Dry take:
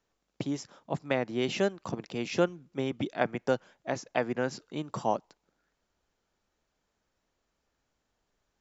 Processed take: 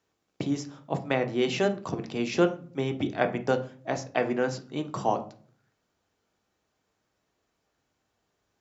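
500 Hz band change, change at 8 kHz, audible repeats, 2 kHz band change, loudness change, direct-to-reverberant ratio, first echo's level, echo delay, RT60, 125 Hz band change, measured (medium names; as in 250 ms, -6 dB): +3.0 dB, no reading, no echo, +3.0 dB, +3.5 dB, 6.0 dB, no echo, no echo, 0.45 s, +4.0 dB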